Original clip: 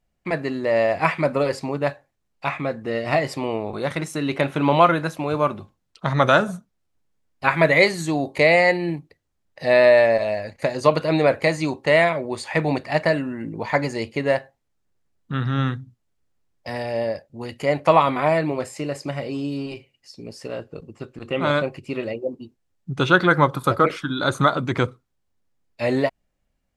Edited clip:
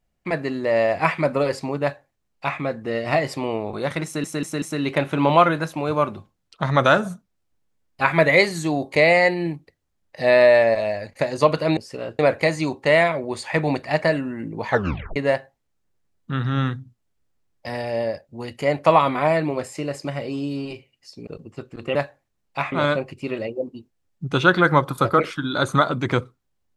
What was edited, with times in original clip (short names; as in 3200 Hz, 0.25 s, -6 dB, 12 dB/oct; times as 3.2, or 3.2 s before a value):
1.82–2.59 copy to 21.38
4.05 stutter 0.19 s, 4 plays
13.69 tape stop 0.48 s
20.28–20.7 move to 11.2